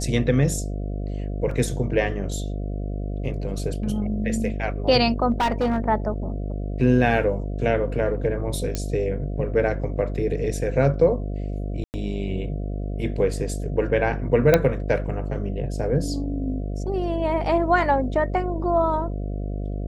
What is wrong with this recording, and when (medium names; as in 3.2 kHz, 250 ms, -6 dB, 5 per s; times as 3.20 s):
buzz 50 Hz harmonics 14 -28 dBFS
1.51 s: dropout 3.1 ms
5.31–5.78 s: clipped -17.5 dBFS
8.75 s: pop -11 dBFS
11.84–11.94 s: dropout 99 ms
14.54 s: pop -3 dBFS